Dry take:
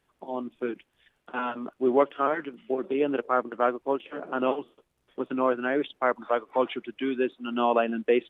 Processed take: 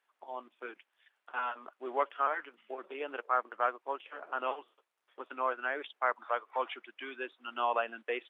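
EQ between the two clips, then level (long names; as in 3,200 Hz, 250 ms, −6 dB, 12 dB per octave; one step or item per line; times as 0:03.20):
high-pass filter 1,100 Hz 12 dB per octave
high-shelf EQ 2,300 Hz −12 dB
+2.0 dB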